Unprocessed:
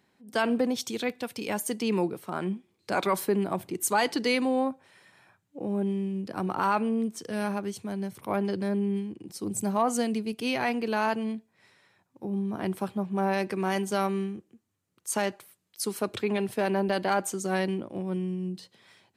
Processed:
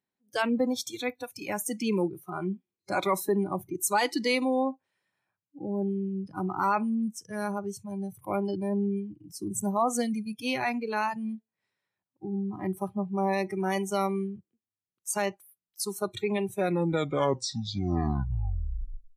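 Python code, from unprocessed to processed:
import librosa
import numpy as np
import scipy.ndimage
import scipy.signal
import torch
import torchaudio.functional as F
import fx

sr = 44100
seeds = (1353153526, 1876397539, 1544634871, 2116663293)

y = fx.tape_stop_end(x, sr, length_s=2.69)
y = fx.noise_reduce_blind(y, sr, reduce_db=22)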